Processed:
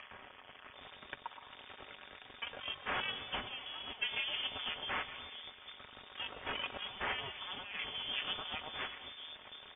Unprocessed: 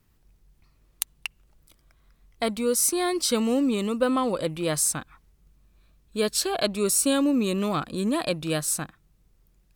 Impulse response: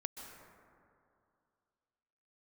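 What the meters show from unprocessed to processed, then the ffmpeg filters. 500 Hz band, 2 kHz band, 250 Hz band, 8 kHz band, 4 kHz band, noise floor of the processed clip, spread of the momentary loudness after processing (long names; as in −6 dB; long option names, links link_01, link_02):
−23.5 dB, −3.5 dB, −30.5 dB, below −40 dB, −5.0 dB, −57 dBFS, 15 LU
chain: -filter_complex "[0:a]aeval=exprs='val(0)+0.5*0.0631*sgn(val(0))':channel_layout=same,equalizer=frequency=1700:width=0.4:gain=-11.5,acrossover=split=340|2600[link_01][link_02][link_03];[link_03]adelay=110[link_04];[link_01]adelay=730[link_05];[link_05][link_02][link_04]amix=inputs=3:normalize=0,aeval=exprs='0.422*(cos(1*acos(clip(val(0)/0.422,-1,1)))-cos(1*PI/2))+0.168*(cos(6*acos(clip(val(0)/0.422,-1,1)))-cos(6*PI/2))':channel_layout=same,aderivative,aecho=1:1:5.8:0.43,asplit=2[link_06][link_07];[1:a]atrim=start_sample=2205[link_08];[link_07][link_08]afir=irnorm=-1:irlink=0,volume=-2.5dB[link_09];[link_06][link_09]amix=inputs=2:normalize=0,lowpass=frequency=3100:width_type=q:width=0.5098,lowpass=frequency=3100:width_type=q:width=0.6013,lowpass=frequency=3100:width_type=q:width=0.9,lowpass=frequency=3100:width_type=q:width=2.563,afreqshift=-3700,acompressor=mode=upward:threshold=-47dB:ratio=2.5,volume=1dB"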